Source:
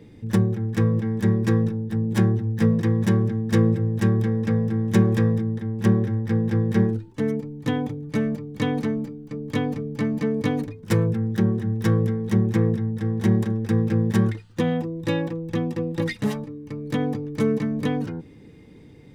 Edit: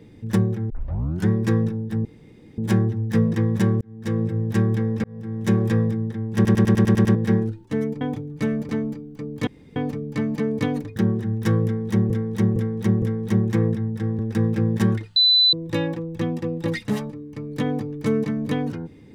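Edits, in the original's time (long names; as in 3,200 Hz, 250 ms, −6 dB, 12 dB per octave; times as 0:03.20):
0:00.70: tape start 0.58 s
0:02.05: splice in room tone 0.53 s
0:03.28–0:03.90: fade in
0:04.51–0:05.32: fade in equal-power
0:05.82: stutter in place 0.10 s, 8 plays
0:07.48–0:07.74: remove
0:08.42–0:08.81: remove
0:09.59: splice in room tone 0.29 s
0:10.79–0:11.35: remove
0:12.03–0:12.49: repeat, 4 plays
0:13.20–0:13.53: remove
0:14.50–0:14.87: beep over 4,000 Hz −12.5 dBFS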